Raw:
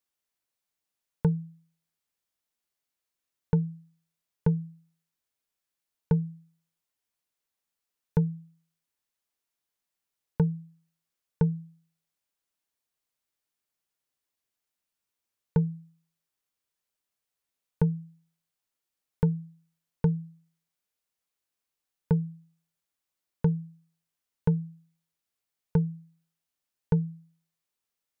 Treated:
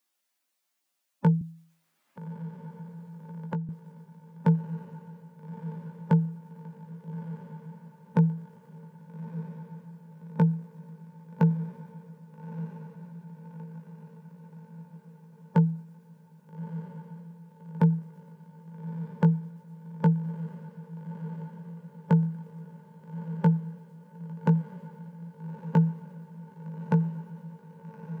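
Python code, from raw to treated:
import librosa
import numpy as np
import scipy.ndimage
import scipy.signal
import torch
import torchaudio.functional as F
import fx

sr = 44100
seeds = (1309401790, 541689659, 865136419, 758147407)

y = fx.spec_quant(x, sr, step_db=15)
y = scipy.signal.sosfilt(scipy.signal.butter(4, 190.0, 'highpass', fs=sr, output='sos'), y)
y = fx.peak_eq(y, sr, hz=430.0, db=-10.5, octaves=0.21)
y = fx.doubler(y, sr, ms=18.0, db=-7.0)
y = fx.echo_diffused(y, sr, ms=1259, feedback_pct=62, wet_db=-12)
y = fx.band_squash(y, sr, depth_pct=70, at=(1.41, 3.69))
y = y * 10.0 ** (7.0 / 20.0)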